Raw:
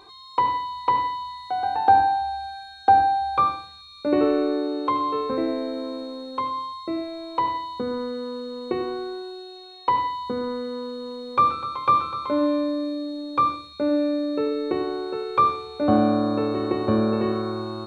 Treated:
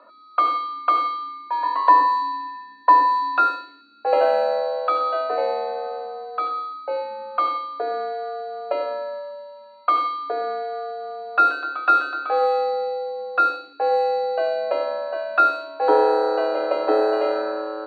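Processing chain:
frequency shifter +210 Hz
low-pass that shuts in the quiet parts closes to 1,300 Hz, open at −15.5 dBFS
level +2 dB

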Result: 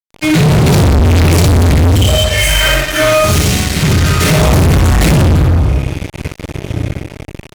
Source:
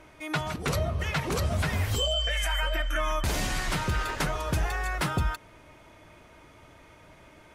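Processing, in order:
guitar amp tone stack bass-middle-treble 10-0-1
rectangular room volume 98 cubic metres, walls mixed, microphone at 1.6 metres
downward compressor 10 to 1, threshold −30 dBFS, peak gain reduction 9.5 dB
high-pass filter 74 Hz 24 dB per octave
double-tracking delay 45 ms −11 dB
flutter between parallel walls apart 10.2 metres, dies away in 0.69 s
rotating-speaker cabinet horn 0.6 Hz
0:02.07–0:04.38: low-shelf EQ 180 Hz −11 dB
fuzz pedal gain 54 dB, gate −59 dBFS
level +6.5 dB

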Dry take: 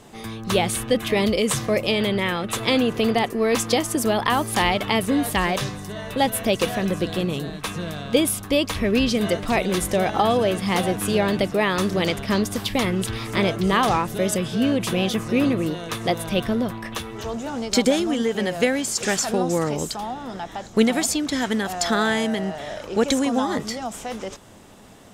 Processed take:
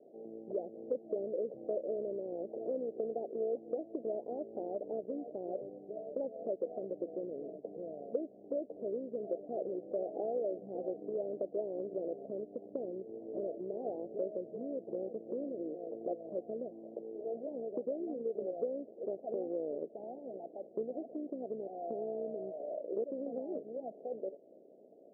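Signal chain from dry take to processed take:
Butterworth low-pass 660 Hz 72 dB per octave
downward compressor 4 to 1, threshold −27 dBFS, peak gain reduction 13 dB
four-pole ladder high-pass 310 Hz, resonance 25%
amplitude modulation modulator 62 Hz, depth 30%
level +1 dB

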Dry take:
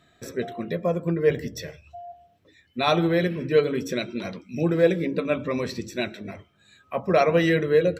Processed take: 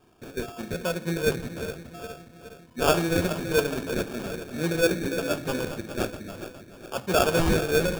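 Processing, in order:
feedback delay that plays each chunk backwards 208 ms, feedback 72%, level −11 dB
flat-topped bell 2,200 Hz +9 dB
sample-rate reduction 2,000 Hz, jitter 0%
level −4.5 dB

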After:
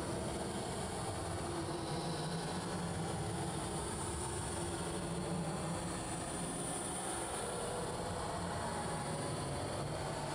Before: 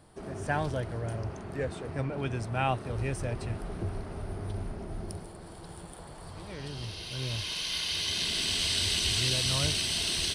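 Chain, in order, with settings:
extreme stretch with random phases 16×, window 0.10 s, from 0:05.51
brickwall limiter −40 dBFS, peak gain reduction 8.5 dB
high-pass filter 84 Hz 12 dB per octave
level +10 dB

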